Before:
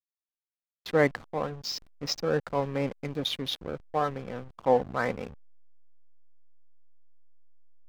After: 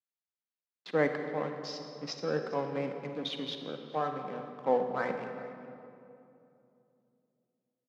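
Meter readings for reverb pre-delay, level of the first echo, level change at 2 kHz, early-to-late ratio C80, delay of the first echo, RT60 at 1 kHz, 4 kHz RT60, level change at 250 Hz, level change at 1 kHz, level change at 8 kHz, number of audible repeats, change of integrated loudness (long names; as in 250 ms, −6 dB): 37 ms, −19.5 dB, −4.5 dB, 7.0 dB, 412 ms, 2.5 s, 1.5 s, −3.5 dB, −3.5 dB, below −10 dB, 1, −4.5 dB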